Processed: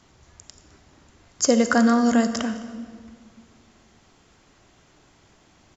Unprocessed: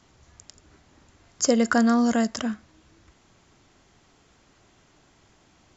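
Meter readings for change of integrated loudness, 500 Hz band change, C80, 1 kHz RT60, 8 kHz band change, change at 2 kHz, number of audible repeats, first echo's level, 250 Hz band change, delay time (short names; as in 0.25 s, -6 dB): +2.0 dB, +2.5 dB, 11.0 dB, 1.8 s, n/a, +2.5 dB, 1, -20.5 dB, +2.0 dB, 0.209 s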